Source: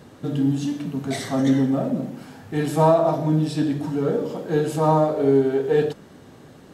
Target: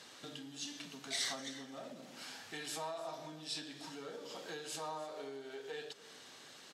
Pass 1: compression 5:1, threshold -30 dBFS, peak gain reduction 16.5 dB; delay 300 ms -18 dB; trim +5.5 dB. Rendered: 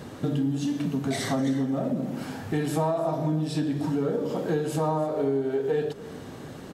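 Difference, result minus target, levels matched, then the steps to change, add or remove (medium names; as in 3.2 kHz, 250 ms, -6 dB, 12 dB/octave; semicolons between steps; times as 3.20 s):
4 kHz band -15.5 dB
add after compression: band-pass filter 4.7 kHz, Q 0.94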